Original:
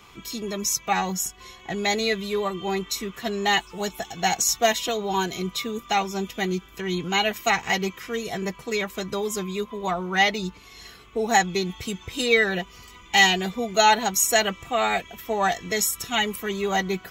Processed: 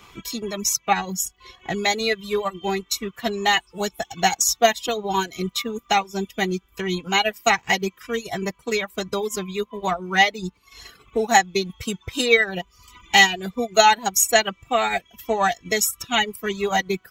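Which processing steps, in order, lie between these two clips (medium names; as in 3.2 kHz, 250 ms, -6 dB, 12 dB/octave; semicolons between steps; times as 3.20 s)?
crackle 22 per s -48 dBFS; transient shaper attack +3 dB, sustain -6 dB; reverb removal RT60 0.76 s; trim +2 dB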